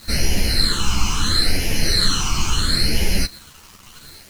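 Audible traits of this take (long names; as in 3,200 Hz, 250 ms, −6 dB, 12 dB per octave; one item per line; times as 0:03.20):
phaser sweep stages 8, 0.74 Hz, lowest notch 530–1,200 Hz
a quantiser's noise floor 8 bits, dither none
a shimmering, thickened sound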